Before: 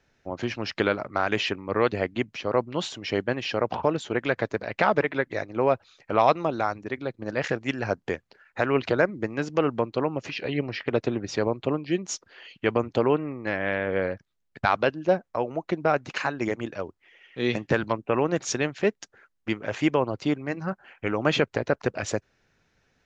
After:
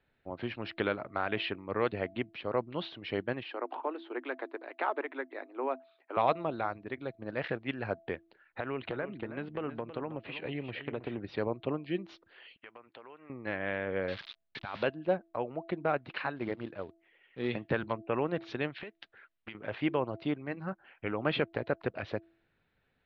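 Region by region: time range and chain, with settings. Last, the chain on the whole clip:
3.43–6.17 s: rippled Chebyshev high-pass 250 Hz, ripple 6 dB + distance through air 66 m
8.60–11.18 s: low-pass 3.8 kHz 24 dB/octave + compression 4:1, threshold -24 dBFS + delay 321 ms -11.5 dB
12.56–13.30 s: band-pass filter 1.8 kHz, Q 0.78 + compression 4:1, threshold -41 dBFS
14.08–14.83 s: zero-crossing glitches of -18 dBFS + peaking EQ 690 Hz -3 dB 0.38 oct + compressor with a negative ratio -28 dBFS
16.36–17.51 s: low-pass 2 kHz 6 dB/octave + short-mantissa float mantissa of 2-bit
18.70–19.55 s: peaking EQ 2.8 kHz +9 dB 2.6 oct + compression 12:1, threshold -32 dBFS
whole clip: steep low-pass 4.1 kHz 48 dB/octave; de-hum 332.6 Hz, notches 2; trim -7.5 dB

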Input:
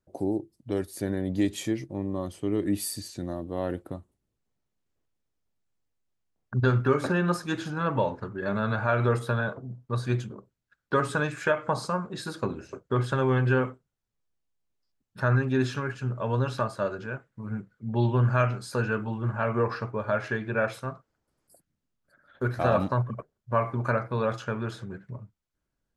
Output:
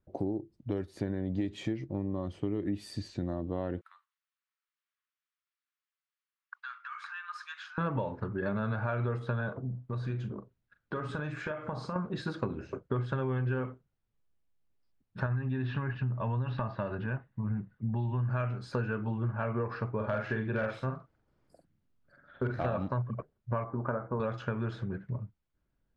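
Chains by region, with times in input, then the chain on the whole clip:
3.81–7.78 s: compression 2.5:1, threshold -34 dBFS + steep high-pass 1.1 kHz 48 dB/octave
9.69–11.96 s: compression 3:1, threshold -37 dBFS + doubling 39 ms -11 dB
15.26–18.29 s: low-pass 4 kHz 24 dB/octave + compression 2:1, threshold -29 dBFS + comb 1.1 ms, depth 43%
19.96–22.66 s: doubling 46 ms -4 dB + hard clipper -18.5 dBFS
23.64–24.20 s: low-pass 1.4 kHz 24 dB/octave + peaking EQ 110 Hz -7.5 dB 0.94 oct
whole clip: low-pass 3.4 kHz 12 dB/octave; bass shelf 250 Hz +5.5 dB; compression, threshold -29 dBFS

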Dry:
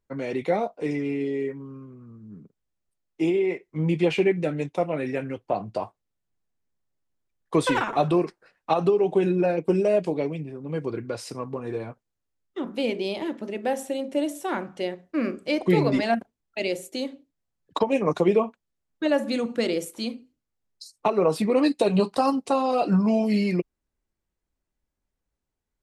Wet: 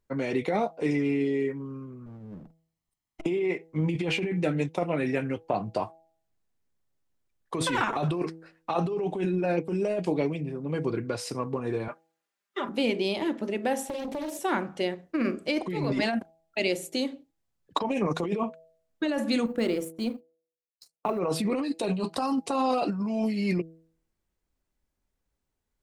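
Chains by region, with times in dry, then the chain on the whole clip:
2.06–3.26 s: comb filter that takes the minimum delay 0.98 ms + transformer saturation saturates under 270 Hz
11.88–12.69 s: high-pass 730 Hz 6 dB/octave + peaking EQ 1.5 kHz +7.5 dB 2.2 oct + comb 5 ms, depth 67%
13.88–14.39 s: doubling 36 ms -4.5 dB + compression 16:1, threshold -30 dBFS + loudspeaker Doppler distortion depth 0.55 ms
19.46–21.19 s: companding laws mixed up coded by A + gate -49 dBFS, range -16 dB + peaking EQ 4.7 kHz -9 dB 2.3 oct
whole clip: de-hum 162.7 Hz, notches 5; dynamic bell 540 Hz, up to -4 dB, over -33 dBFS, Q 1.6; compressor with a negative ratio -26 dBFS, ratio -1

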